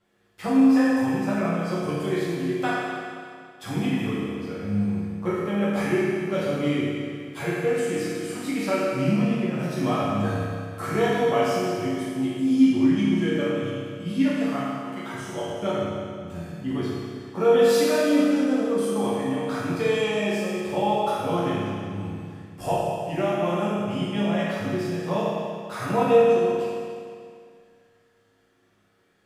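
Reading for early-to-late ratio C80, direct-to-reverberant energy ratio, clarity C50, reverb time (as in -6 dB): -1.0 dB, -10.0 dB, -3.0 dB, 2.2 s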